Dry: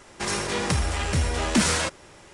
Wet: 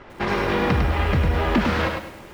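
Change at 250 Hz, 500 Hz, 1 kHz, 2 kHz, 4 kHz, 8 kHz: +4.0, +6.0, +5.5, +3.0, -3.5, -19.0 dB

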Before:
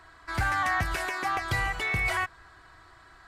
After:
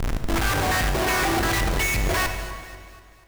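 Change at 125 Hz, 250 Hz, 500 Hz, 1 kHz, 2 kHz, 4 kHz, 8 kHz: +7.5, +14.0, +12.5, +3.5, +3.0, +10.0, +14.0 dB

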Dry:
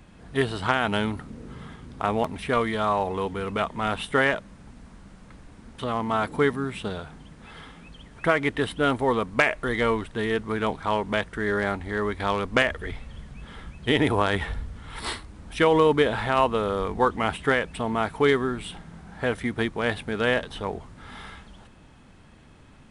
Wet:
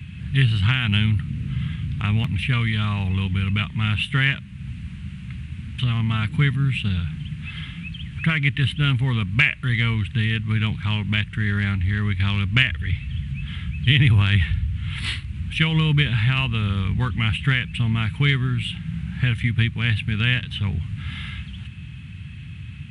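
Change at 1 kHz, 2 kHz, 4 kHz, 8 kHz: -9.0 dB, +3.5 dB, +8.0 dB, n/a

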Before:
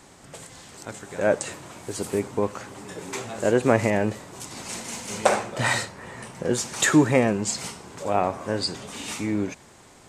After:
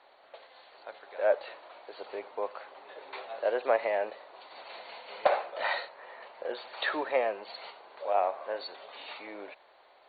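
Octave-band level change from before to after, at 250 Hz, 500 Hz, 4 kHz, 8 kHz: -23.5 dB, -6.0 dB, -10.0 dB, under -40 dB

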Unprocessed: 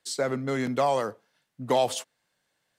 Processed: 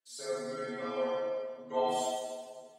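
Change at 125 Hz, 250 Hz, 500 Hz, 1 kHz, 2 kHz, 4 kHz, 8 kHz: -19.0, -10.5, -5.5, -6.5, -9.0, -7.5, -6.5 dB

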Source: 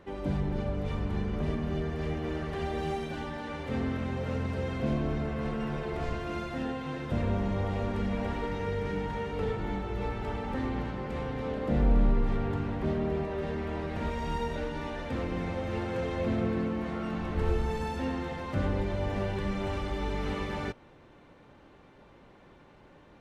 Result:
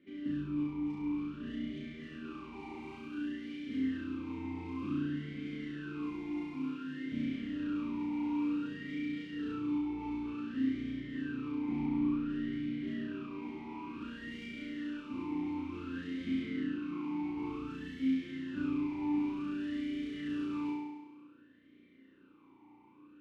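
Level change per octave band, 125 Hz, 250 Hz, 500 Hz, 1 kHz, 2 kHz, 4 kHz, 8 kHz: -15.0 dB, 0.0 dB, -16.0 dB, -11.5 dB, -7.0 dB, -6.5 dB, n/a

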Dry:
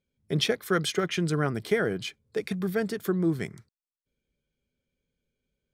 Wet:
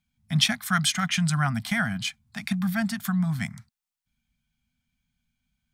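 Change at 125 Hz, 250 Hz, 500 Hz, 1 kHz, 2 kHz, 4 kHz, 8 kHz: +4.5, +2.5, -16.0, +4.5, +5.0, +6.0, +8.5 dB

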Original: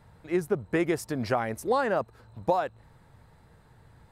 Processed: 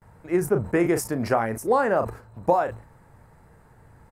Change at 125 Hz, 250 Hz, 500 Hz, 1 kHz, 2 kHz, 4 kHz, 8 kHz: +5.0, +4.5, +5.0, +5.0, +3.5, -1.0, +8.0 dB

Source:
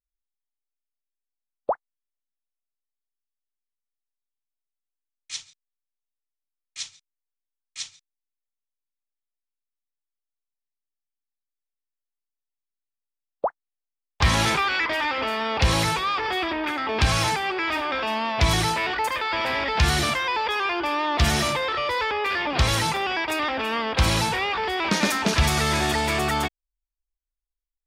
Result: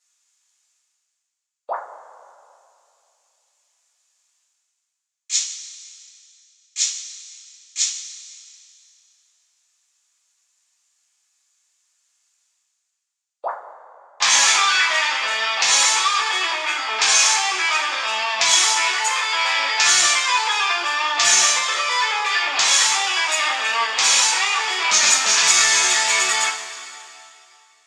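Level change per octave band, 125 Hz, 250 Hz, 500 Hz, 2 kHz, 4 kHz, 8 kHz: under -25 dB, -17.0 dB, -5.5 dB, +6.5 dB, +9.0 dB, +16.5 dB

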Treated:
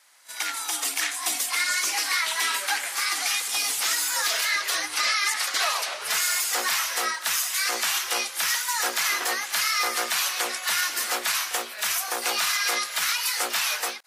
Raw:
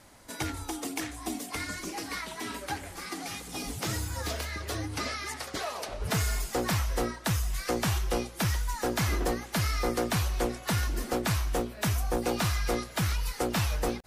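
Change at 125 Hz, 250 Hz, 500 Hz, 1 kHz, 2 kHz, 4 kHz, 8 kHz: under -30 dB, -14.0 dB, -4.5 dB, +5.5 dB, +11.0 dB, +12.0 dB, +12.5 dB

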